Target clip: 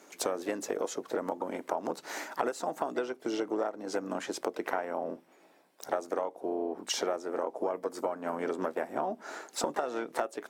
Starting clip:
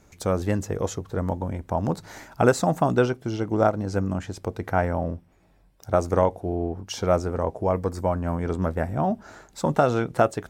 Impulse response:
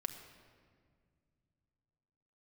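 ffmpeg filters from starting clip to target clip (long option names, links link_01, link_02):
-filter_complex "[0:a]asplit=3[link_01][link_02][link_03];[link_02]asetrate=29433,aresample=44100,atempo=1.49831,volume=-15dB[link_04];[link_03]asetrate=58866,aresample=44100,atempo=0.749154,volume=-14dB[link_05];[link_01][link_04][link_05]amix=inputs=3:normalize=0,highpass=frequency=290:width=0.5412,highpass=frequency=290:width=1.3066,acompressor=threshold=-32dB:ratio=16,volume=4dB"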